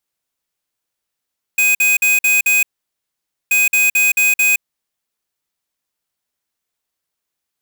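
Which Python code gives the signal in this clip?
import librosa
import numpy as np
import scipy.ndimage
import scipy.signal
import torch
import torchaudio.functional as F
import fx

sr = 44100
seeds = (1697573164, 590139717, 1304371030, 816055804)

y = fx.beep_pattern(sr, wave='square', hz=2500.0, on_s=0.17, off_s=0.05, beeps=5, pause_s=0.88, groups=2, level_db=-13.0)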